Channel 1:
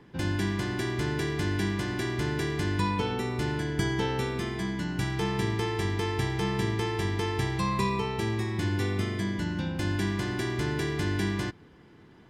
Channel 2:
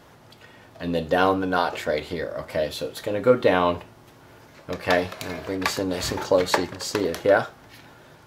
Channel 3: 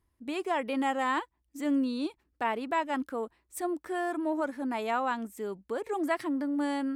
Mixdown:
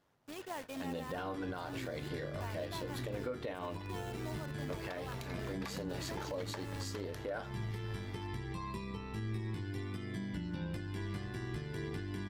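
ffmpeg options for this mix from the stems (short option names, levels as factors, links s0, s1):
-filter_complex "[0:a]bandreject=f=6600:w=6.2,acrossover=split=230|2100[s0][s1][s2];[s0]acompressor=threshold=0.0224:ratio=4[s3];[s1]acompressor=threshold=0.00891:ratio=4[s4];[s2]acompressor=threshold=0.00282:ratio=4[s5];[s3][s4][s5]amix=inputs=3:normalize=0,flanger=delay=16.5:depth=2.4:speed=0.43,adelay=950,volume=1.12[s6];[1:a]volume=0.473[s7];[2:a]acrusher=bits=5:mix=0:aa=0.000001,acompressor=mode=upward:threshold=0.0224:ratio=2.5,volume=0.266[s8];[s6][s7][s8]amix=inputs=3:normalize=0,agate=range=0.158:threshold=0.00501:ratio=16:detection=peak,tremolo=f=96:d=0.4,alimiter=level_in=2:limit=0.0631:level=0:latency=1:release=263,volume=0.501"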